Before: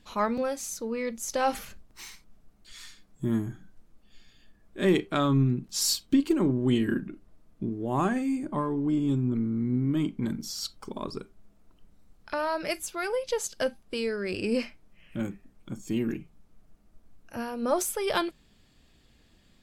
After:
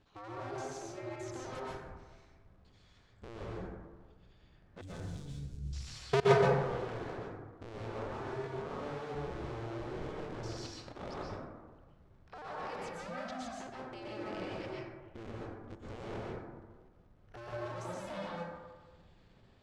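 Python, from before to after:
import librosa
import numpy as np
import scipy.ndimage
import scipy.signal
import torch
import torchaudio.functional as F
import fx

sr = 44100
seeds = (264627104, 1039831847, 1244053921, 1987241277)

y = fx.cycle_switch(x, sr, every=2, mode='inverted')
y = fx.cheby1_bandstop(y, sr, low_hz=100.0, high_hz=7700.0, order=2, at=(4.81, 5.67))
y = fx.level_steps(y, sr, step_db=21)
y = fx.air_absorb(y, sr, metres=110.0)
y = y + 10.0 ** (-20.5 / 20.0) * np.pad(y, (int(96 * sr / 1000.0), 0))[:len(y)]
y = fx.rev_plate(y, sr, seeds[0], rt60_s=1.4, hf_ratio=0.3, predelay_ms=110, drr_db=-5.5)
y = y * librosa.db_to_amplitude(-5.0)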